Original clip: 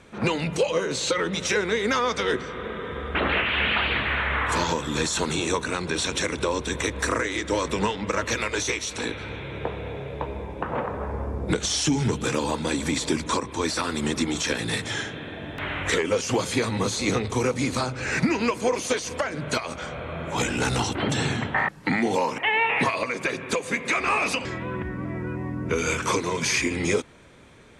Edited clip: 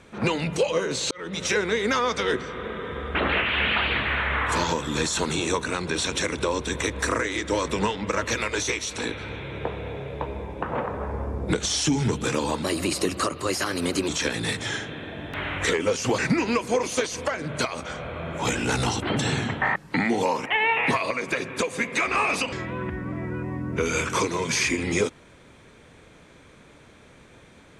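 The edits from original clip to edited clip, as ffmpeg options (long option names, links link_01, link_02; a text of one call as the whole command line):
ffmpeg -i in.wav -filter_complex "[0:a]asplit=5[link_01][link_02][link_03][link_04][link_05];[link_01]atrim=end=1.11,asetpts=PTS-STARTPTS,afade=type=out:start_time=1.106:duration=0.004:curve=hsin[link_06];[link_02]atrim=start=1.11:end=12.634,asetpts=PTS-STARTPTS,afade=type=in:duration=0.34[link_07];[link_03]atrim=start=12.63:end=14.33,asetpts=PTS-STARTPTS,asetrate=51597,aresample=44100[link_08];[link_04]atrim=start=14.326:end=16.432[link_09];[link_05]atrim=start=18.108[link_10];[link_06][link_07]concat=n=2:v=0:a=1[link_11];[link_11][link_08]acrossfade=duration=0.004:curve1=hsin:curve2=hsin[link_12];[link_12][link_09]acrossfade=duration=0.004:curve1=hsin:curve2=hsin[link_13];[link_13][link_10]acrossfade=duration=0.004:curve1=hsin:curve2=hsin" out.wav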